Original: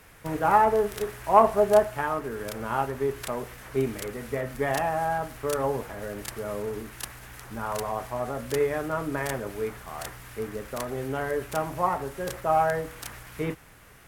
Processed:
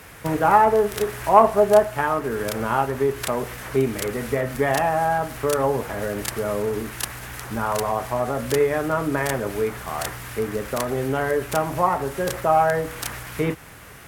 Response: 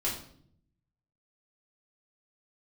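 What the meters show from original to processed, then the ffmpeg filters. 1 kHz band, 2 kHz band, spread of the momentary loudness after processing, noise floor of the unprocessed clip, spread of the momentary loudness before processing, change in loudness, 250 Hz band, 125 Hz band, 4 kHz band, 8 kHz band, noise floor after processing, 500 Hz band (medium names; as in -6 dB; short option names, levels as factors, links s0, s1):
+5.0 dB, +6.0 dB, 12 LU, -52 dBFS, 15 LU, +5.0 dB, +6.5 dB, +6.5 dB, +7.5 dB, +7.5 dB, -43 dBFS, +5.5 dB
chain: -filter_complex "[0:a]asplit=2[s0][s1];[s1]acompressor=threshold=0.0251:ratio=6,volume=1.26[s2];[s0][s2]amix=inputs=2:normalize=0,highpass=49,volume=1.33"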